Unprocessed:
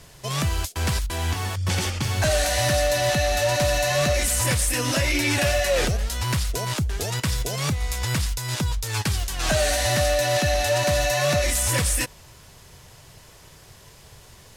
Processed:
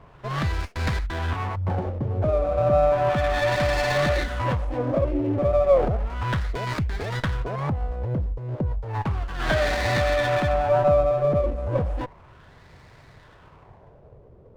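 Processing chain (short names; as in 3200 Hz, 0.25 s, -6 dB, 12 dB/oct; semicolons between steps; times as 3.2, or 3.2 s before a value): LFO low-pass sine 0.33 Hz 480–2300 Hz; running maximum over 9 samples; gain -1 dB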